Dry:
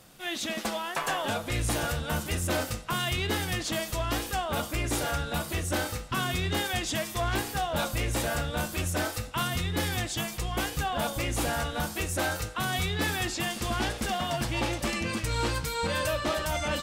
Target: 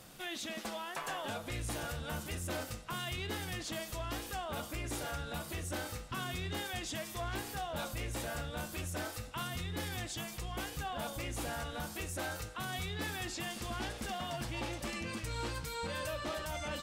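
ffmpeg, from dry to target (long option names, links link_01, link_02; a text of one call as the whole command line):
ffmpeg -i in.wav -af "alimiter=level_in=8dB:limit=-24dB:level=0:latency=1:release=455,volume=-8dB" out.wav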